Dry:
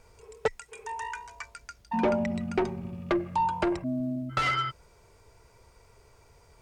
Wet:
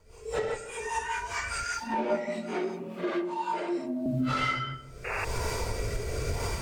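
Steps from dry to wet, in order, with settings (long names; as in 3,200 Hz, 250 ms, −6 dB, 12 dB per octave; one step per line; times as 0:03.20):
random phases in long frames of 200 ms
camcorder AGC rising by 38 dB per second
0:01.63–0:04.06: high-pass filter 260 Hz 24 dB per octave
0:05.04–0:05.25: sound drawn into the spectrogram noise 390–2,800 Hz −30 dBFS
rotating-speaker cabinet horn 5 Hz, later 0.8 Hz, at 0:02.93
feedback echo with a low-pass in the loop 157 ms, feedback 46%, low-pass 830 Hz, level −10.5 dB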